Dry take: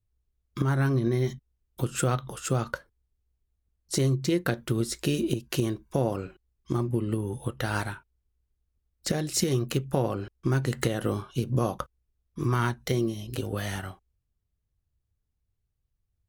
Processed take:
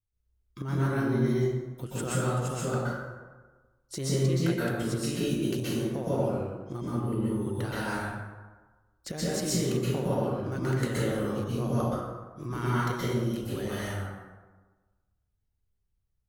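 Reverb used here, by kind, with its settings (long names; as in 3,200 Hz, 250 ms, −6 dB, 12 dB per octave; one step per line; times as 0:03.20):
dense smooth reverb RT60 1.3 s, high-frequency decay 0.5×, pre-delay 110 ms, DRR −8.5 dB
level −10 dB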